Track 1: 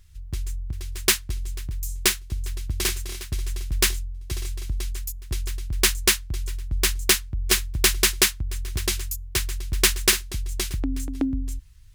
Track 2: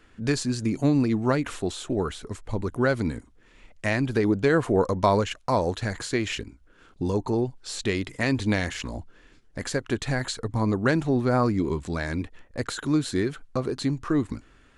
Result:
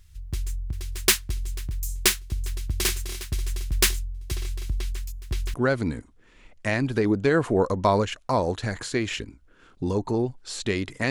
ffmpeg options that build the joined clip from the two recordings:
-filter_complex "[0:a]asettb=1/sr,asplit=3[a][b][c];[a]atrim=end=4.354[d];[b]atrim=start=4.35:end=5.54,asetpts=PTS-STARTPTS,afade=t=in:d=0.004:c=qsin,afade=t=out:st=1.186:d=0.004:c=qsin,acrossover=split=4800[e][f];[f]acompressor=threshold=-43dB:ratio=4:attack=1:release=60[g];[e][g]amix=inputs=2:normalize=0[h];[c]atrim=start=5.536[i];[d][h]acrossfade=d=0.004:c1=hsin:c2=qsin[j];[j][i]acrossfade=d=0.004:c1=qsin:c2=hsin,apad=whole_dur=11.1,atrim=end=11.1,atrim=end=5.542[k];[1:a]atrim=start=2.728:end=8.29[l];[k][l]acrossfade=d=0.004:c1=hsin:c2=hsin"

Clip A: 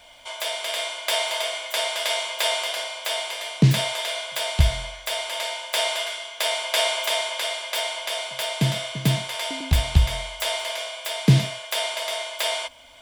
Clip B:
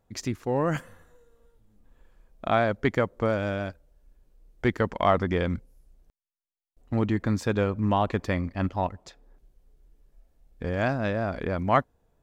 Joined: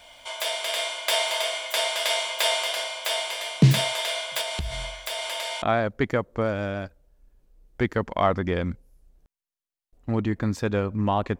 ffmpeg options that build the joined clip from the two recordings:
-filter_complex "[0:a]asettb=1/sr,asplit=3[a][b][c];[a]atrim=end=4.414[d];[b]atrim=start=4.41:end=5.62,asetpts=PTS-STARTPTS,afade=t=in:d=0.004:c=qsin,afade=t=out:st=1.206:d=0.004:c=qsin,acompressor=threshold=-26dB:ratio=8:attack=3.2:release=140:knee=1:detection=peak[e];[c]atrim=start=5.616[f];[d][e]acrossfade=d=0.004:c1=hsin:c2=qsin[g];[g][f]acrossfade=d=0.004:c1=qsin:c2=hsin,apad=whole_dur=11.39,atrim=end=11.39,atrim=end=5.622[h];[1:a]atrim=start=2.458:end=8.23[i];[h][i]acrossfade=d=0.004:c1=hsin:c2=hsin"

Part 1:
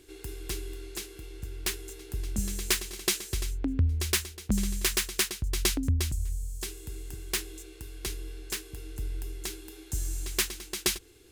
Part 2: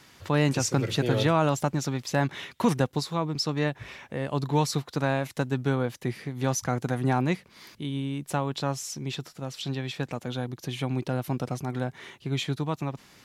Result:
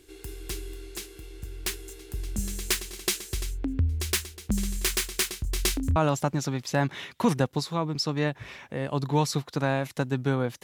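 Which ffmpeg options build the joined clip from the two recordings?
-filter_complex "[0:a]asettb=1/sr,asplit=3[a][b][c];[a]atrim=end=4.724[d];[b]atrim=start=4.72:end=5.96,asetpts=PTS-STARTPTS,afade=t=in:d=0.004:c=qsin,afade=t=out:st=1.236:d=0.004:c=qsin,asplit=2[e][f];[f]adelay=27,volume=-10dB[g];[e][g]amix=inputs=2:normalize=0,atrim=end_sample=54684[h];[c]atrim=start=5.956[i];[d][h]acrossfade=d=0.004:c1=hsin:c2=qsin[j];[j][i]acrossfade=d=0.004:c1=qsin:c2=hsin,apad=whole_dur=10.63,atrim=end=10.63,atrim=end=5.962[k];[1:a]atrim=start=1.358:end=6.03[l];[k][l]acrossfade=d=0.004:c1=hsin:c2=hsin"

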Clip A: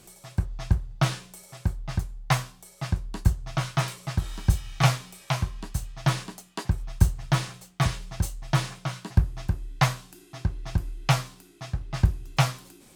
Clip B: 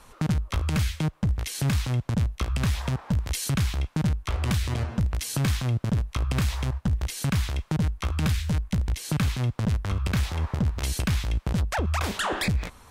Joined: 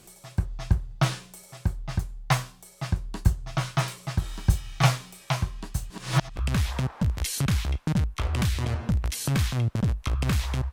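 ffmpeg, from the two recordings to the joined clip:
-filter_complex "[0:a]apad=whole_dur=10.72,atrim=end=10.72,asplit=2[a][b];[a]atrim=end=5.902[c];[b]atrim=start=5.898:end=6.362,asetpts=PTS-STARTPTS,areverse[d];[1:a]atrim=start=2.448:end=6.81[e];[c][d]acrossfade=d=0.004:c1=hsin:c2=hsin[f];[f][e]acrossfade=d=0.004:c1=hsin:c2=hsin"

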